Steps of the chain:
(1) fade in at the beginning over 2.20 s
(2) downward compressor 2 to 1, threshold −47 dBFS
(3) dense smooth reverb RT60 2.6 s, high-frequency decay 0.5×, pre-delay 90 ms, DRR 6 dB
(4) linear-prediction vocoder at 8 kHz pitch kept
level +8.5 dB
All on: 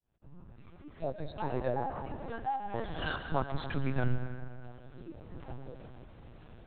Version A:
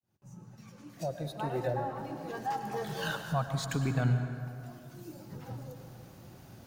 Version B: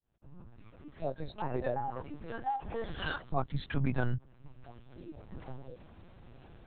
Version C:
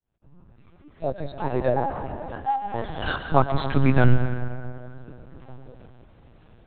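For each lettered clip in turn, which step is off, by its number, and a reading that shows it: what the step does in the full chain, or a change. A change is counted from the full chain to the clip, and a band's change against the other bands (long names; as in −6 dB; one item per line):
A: 4, 125 Hz band +4.0 dB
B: 3, change in momentary loudness spread +2 LU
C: 2, average gain reduction 5.5 dB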